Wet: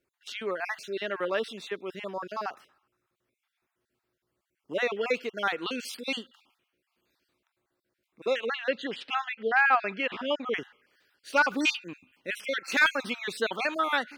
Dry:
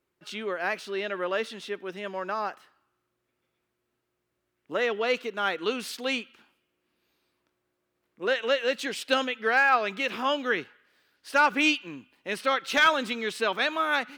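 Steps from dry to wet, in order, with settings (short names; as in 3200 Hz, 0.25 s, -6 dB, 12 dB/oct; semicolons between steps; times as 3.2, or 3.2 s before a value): random spectral dropouts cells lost 34%; 8.46–10.54 LPF 3200 Hz 12 dB/oct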